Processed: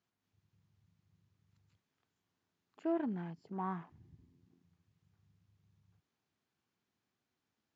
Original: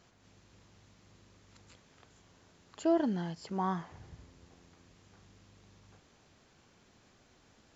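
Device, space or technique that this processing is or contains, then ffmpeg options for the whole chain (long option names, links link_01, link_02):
over-cleaned archive recording: -filter_complex "[0:a]highpass=100,lowpass=6300,afwtdn=0.00355,asettb=1/sr,asplit=3[link_01][link_02][link_03];[link_01]atrim=end=3.984[link_04];[link_02]atrim=start=3.98:end=4.41,asetpts=PTS-STARTPTS,afade=type=in:duration=0.004:curve=qsin,afade=type=out:start_time=0.426:duration=0.004:curve=qsin,bandreject=frequency=1400:width=8.8[link_05];[link_03]atrim=start=4.406[link_06];[link_04][link_05]acrossfade=duration=0.004:curve1=hsin:curve2=qsin[link_07];[link_07][link_06]acrossfade=duration=0.004:curve1=qsin:curve2=hsin,equalizer=frequency=550:width=2.4:gain=-6,volume=-5dB"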